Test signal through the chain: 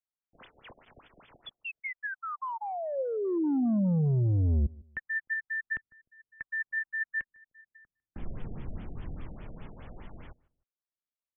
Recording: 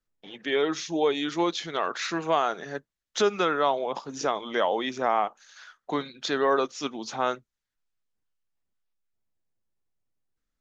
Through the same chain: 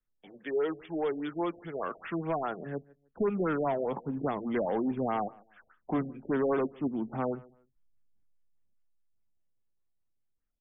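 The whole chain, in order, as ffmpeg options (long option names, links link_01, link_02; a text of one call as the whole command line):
ffmpeg -i in.wav -filter_complex "[0:a]highshelf=frequency=2000:gain=-2.5,acrossover=split=300|630|3500[link_01][link_02][link_03][link_04];[link_01]dynaudnorm=framelen=250:gausssize=21:maxgain=15dB[link_05];[link_04]aeval=exprs='(mod(53.1*val(0)+1,2)-1)/53.1':channel_layout=same[link_06];[link_05][link_02][link_03][link_06]amix=inputs=4:normalize=0,flanger=delay=0.4:depth=2:regen=76:speed=0.88:shape=triangular,asoftclip=type=tanh:threshold=-23dB,asplit=2[link_07][link_08];[link_08]adelay=152,lowpass=frequency=1400:poles=1,volume=-23dB,asplit=2[link_09][link_10];[link_10]adelay=152,lowpass=frequency=1400:poles=1,volume=0.28[link_11];[link_07][link_09][link_11]amix=inputs=3:normalize=0,afftfilt=real='re*lt(b*sr/1024,730*pow(3600/730,0.5+0.5*sin(2*PI*4.9*pts/sr)))':imag='im*lt(b*sr/1024,730*pow(3600/730,0.5+0.5*sin(2*PI*4.9*pts/sr)))':win_size=1024:overlap=0.75" out.wav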